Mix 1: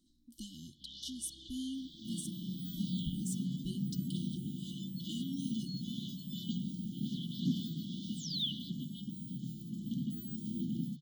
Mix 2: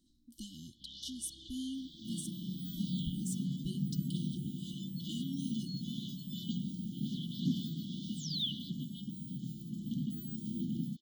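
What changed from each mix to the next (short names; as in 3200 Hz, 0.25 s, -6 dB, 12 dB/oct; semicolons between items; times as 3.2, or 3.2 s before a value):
master: remove notches 50/100/150 Hz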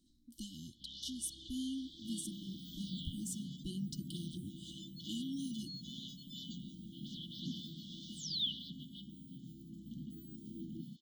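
second sound -10.5 dB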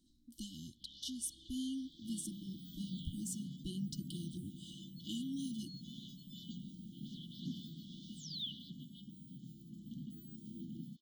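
first sound -6.5 dB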